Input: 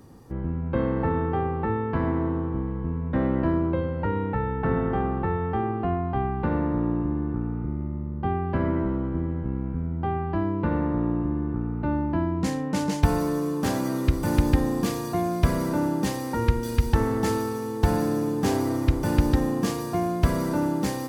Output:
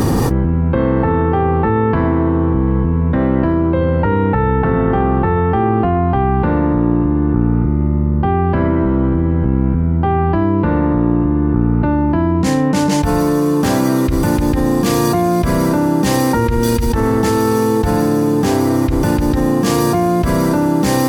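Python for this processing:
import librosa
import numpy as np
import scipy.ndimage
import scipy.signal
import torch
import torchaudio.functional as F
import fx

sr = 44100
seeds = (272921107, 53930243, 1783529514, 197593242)

y = fx.lowpass(x, sr, hz=6300.0, slope=12, at=(11.17, 12.12))
y = fx.env_flatten(y, sr, amount_pct=100)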